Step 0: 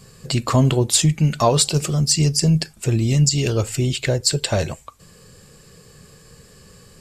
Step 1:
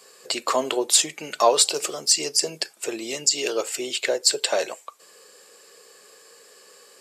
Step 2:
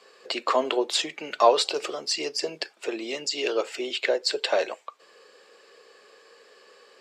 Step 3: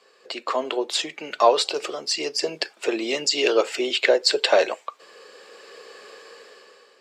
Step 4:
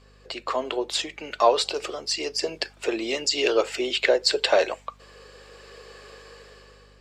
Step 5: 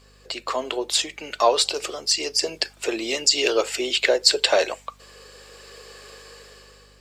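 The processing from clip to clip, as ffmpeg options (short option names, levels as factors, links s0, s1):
-af "highpass=f=390:w=0.5412,highpass=f=390:w=1.3066"
-filter_complex "[0:a]acrossover=split=190 4600:gain=0.112 1 0.0794[s0][s1][s2];[s0][s1][s2]amix=inputs=3:normalize=0"
-af "dynaudnorm=f=320:g=5:m=4.47,volume=0.708"
-af "aeval=exprs='val(0)+0.00251*(sin(2*PI*50*n/s)+sin(2*PI*2*50*n/s)/2+sin(2*PI*3*50*n/s)/3+sin(2*PI*4*50*n/s)/4+sin(2*PI*5*50*n/s)/5)':c=same,volume=0.794"
-af "crystalizer=i=2:c=0"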